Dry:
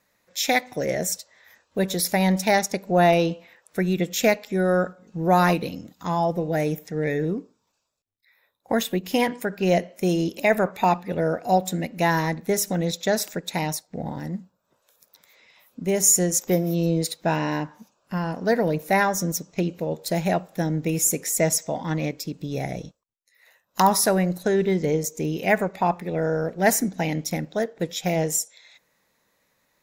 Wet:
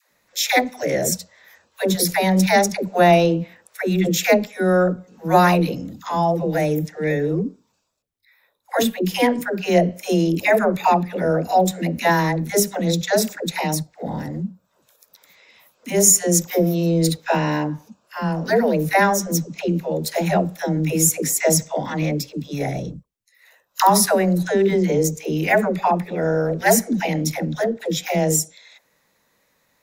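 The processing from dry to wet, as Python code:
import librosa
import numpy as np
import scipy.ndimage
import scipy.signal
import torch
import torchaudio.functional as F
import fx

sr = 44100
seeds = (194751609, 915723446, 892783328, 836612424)

y = fx.dispersion(x, sr, late='lows', ms=119.0, hz=440.0)
y = F.gain(torch.from_numpy(y), 4.0).numpy()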